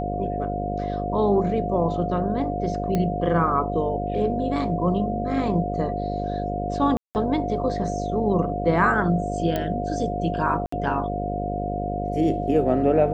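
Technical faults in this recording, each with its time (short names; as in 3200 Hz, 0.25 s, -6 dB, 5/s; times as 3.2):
buzz 50 Hz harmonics 13 -29 dBFS
tone 710 Hz -28 dBFS
2.95 pop -12 dBFS
6.97–7.15 gap 0.179 s
9.56 pop -12 dBFS
10.66–10.72 gap 64 ms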